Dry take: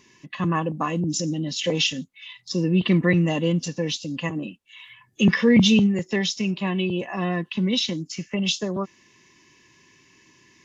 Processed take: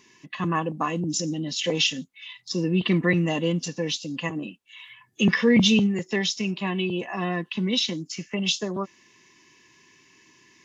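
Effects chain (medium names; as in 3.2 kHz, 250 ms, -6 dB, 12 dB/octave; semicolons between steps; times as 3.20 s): bass shelf 140 Hz -9 dB; band-stop 560 Hz, Q 12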